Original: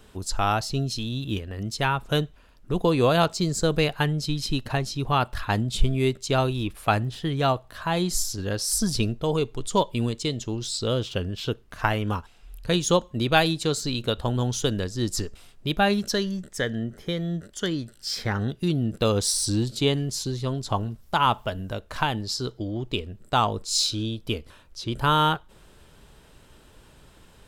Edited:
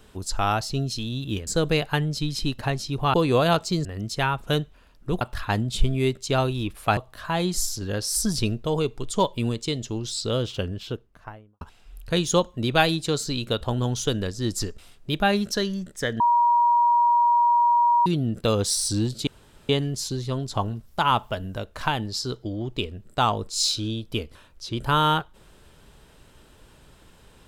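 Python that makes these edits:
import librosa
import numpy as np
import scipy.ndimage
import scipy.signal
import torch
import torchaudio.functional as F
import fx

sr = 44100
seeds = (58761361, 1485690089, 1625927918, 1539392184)

y = fx.studio_fade_out(x, sr, start_s=11.08, length_s=1.1)
y = fx.edit(y, sr, fx.swap(start_s=1.47, length_s=1.36, other_s=3.54, other_length_s=1.67),
    fx.cut(start_s=6.97, length_s=0.57),
    fx.bleep(start_s=16.77, length_s=1.86, hz=953.0, db=-15.5),
    fx.insert_room_tone(at_s=19.84, length_s=0.42), tone=tone)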